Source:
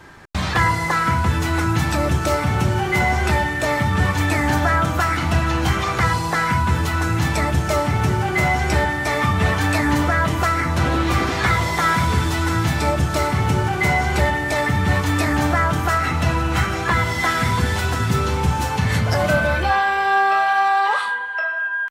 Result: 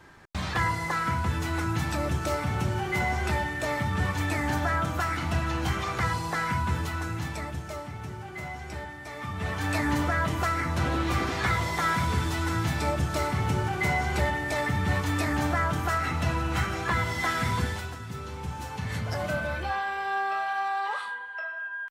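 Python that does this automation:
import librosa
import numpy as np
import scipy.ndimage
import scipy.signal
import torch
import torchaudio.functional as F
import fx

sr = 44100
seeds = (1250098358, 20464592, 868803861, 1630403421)

y = fx.gain(x, sr, db=fx.line((6.72, -9.0), (7.94, -19.0), (9.13, -19.0), (9.77, -8.0), (17.62, -8.0), (18.01, -19.0), (19.06, -12.0)))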